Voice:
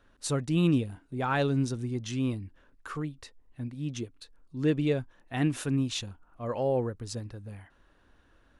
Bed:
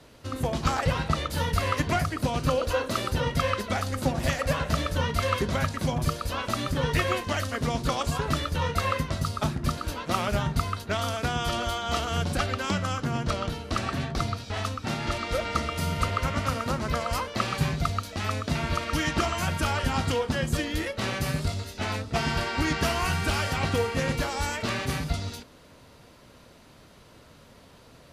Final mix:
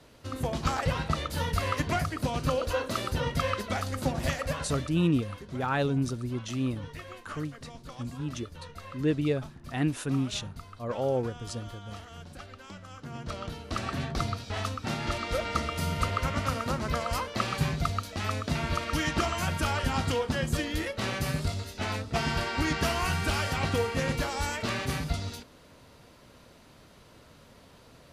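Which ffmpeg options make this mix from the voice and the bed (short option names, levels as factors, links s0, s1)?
-filter_complex "[0:a]adelay=4400,volume=0.944[s0];[1:a]volume=4.47,afade=t=out:st=4.27:d=0.75:silence=0.177828,afade=t=in:st=12.88:d=1.22:silence=0.158489[s1];[s0][s1]amix=inputs=2:normalize=0"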